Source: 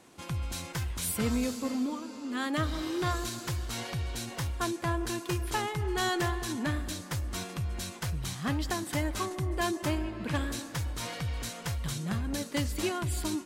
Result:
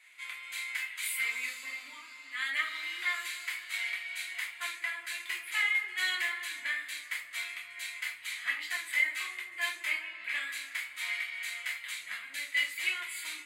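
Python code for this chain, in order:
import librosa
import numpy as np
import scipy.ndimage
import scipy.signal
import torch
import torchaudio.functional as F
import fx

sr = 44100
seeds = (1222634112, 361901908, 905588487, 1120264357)

y = fx.highpass_res(x, sr, hz=2100.0, q=8.6)
y = fx.peak_eq(y, sr, hz=5600.0, db=-11.5, octaves=0.33)
y = fx.room_shoebox(y, sr, seeds[0], volume_m3=250.0, walls='furnished', distance_m=2.9)
y = y * 10.0 ** (-7.0 / 20.0)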